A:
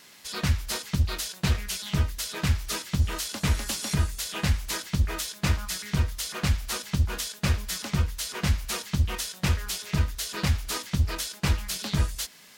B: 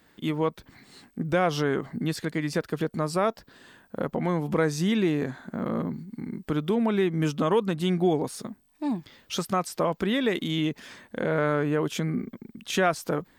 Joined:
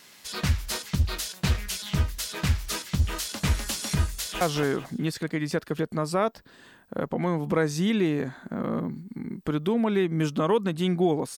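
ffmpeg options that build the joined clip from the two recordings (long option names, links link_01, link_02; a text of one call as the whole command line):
ffmpeg -i cue0.wav -i cue1.wav -filter_complex "[0:a]apad=whole_dur=11.37,atrim=end=11.37,atrim=end=4.412[link_01];[1:a]atrim=start=1.428:end=8.39[link_02];[link_01][link_02]acrossfade=duration=0.004:curve1=hsin:curve2=hsin,asplit=2[link_03][link_04];[link_04]afade=type=in:start_time=4.12:duration=0.01,afade=type=out:start_time=4.41:duration=0.01,aecho=0:1:220|440|660|880:0.630957|0.220835|0.0772923|0.0270523[link_05];[link_03][link_05]amix=inputs=2:normalize=0" out.wav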